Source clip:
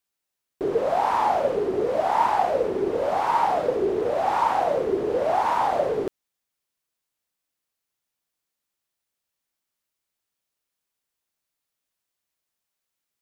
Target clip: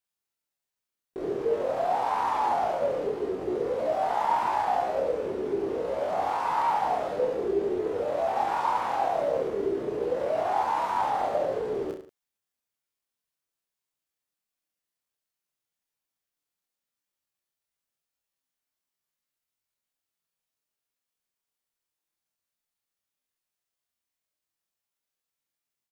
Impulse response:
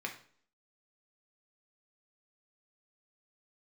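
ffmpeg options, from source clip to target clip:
-af "atempo=0.51,aecho=1:1:30|63|99.3|139.2|183.2:0.631|0.398|0.251|0.158|0.1,volume=0.473"

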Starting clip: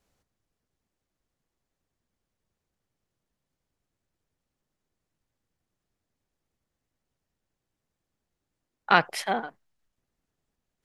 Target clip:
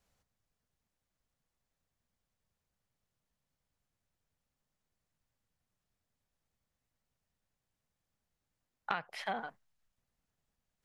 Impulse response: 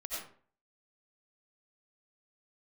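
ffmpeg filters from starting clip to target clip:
-filter_complex "[0:a]acrossover=split=4100[s0][s1];[s1]acompressor=threshold=0.00316:ratio=4:attack=1:release=60[s2];[s0][s2]amix=inputs=2:normalize=0,equalizer=f=340:t=o:w=0.81:g=-7.5,acompressor=threshold=0.0355:ratio=16,volume=0.75"

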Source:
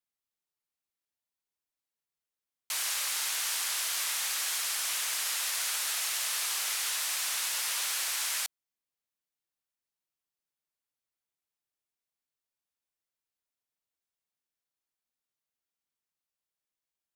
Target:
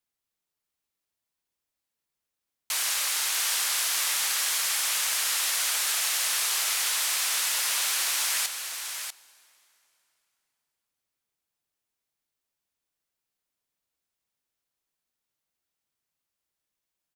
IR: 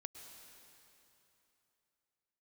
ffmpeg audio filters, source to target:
-filter_complex "[0:a]aecho=1:1:643:0.422,asplit=2[s0][s1];[1:a]atrim=start_sample=2205,lowshelf=f=450:g=10.5[s2];[s1][s2]afir=irnorm=-1:irlink=0,volume=0.355[s3];[s0][s3]amix=inputs=2:normalize=0,volume=1.41"

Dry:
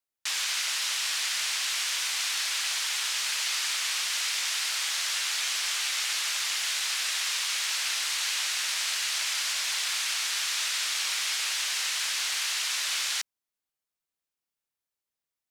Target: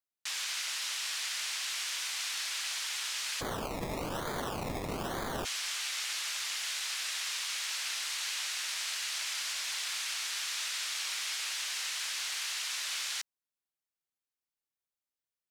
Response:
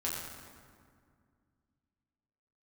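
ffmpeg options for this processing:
-filter_complex "[0:a]asplit=3[s0][s1][s2];[s0]afade=t=out:st=3.4:d=0.02[s3];[s1]acrusher=samples=23:mix=1:aa=0.000001:lfo=1:lforange=13.8:lforate=1.1,afade=t=in:st=3.4:d=0.02,afade=t=out:st=5.44:d=0.02[s4];[s2]afade=t=in:st=5.44:d=0.02[s5];[s3][s4][s5]amix=inputs=3:normalize=0,volume=0.473"

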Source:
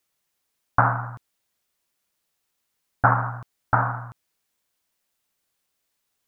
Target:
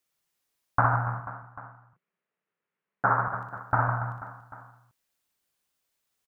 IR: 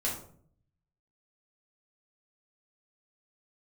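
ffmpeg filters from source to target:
-filter_complex "[0:a]asettb=1/sr,asplit=3[s0][s1][s2];[s0]atrim=end=1.144[s3];[s1]atrim=start=1.14:end=3.28,asetpts=PTS-STARTPTS,afade=t=in:d=0.004:c=qsin,afade=t=out:st=2.136:d=0.004:c=qsin,highpass=f=150:w=0.5412,highpass=f=150:w=1.3066,equalizer=f=170:t=q:w=4:g=5,equalizer=f=280:t=q:w=4:g=-5,equalizer=f=420:t=q:w=4:g=5,equalizer=f=790:t=q:w=4:g=-4,lowpass=f=2300:w=0.5412,lowpass=f=2300:w=1.3066[s4];[s2]atrim=start=3.276[s5];[s3][s4]acrossfade=d=0.004:c1=hsin:c2=qsin[s6];[s6][s5]acrossfade=d=0.004:c1=qsin:c2=hsin,aecho=1:1:60|150|285|487.5|791.2:0.631|0.398|0.251|0.158|0.1,volume=0.562"

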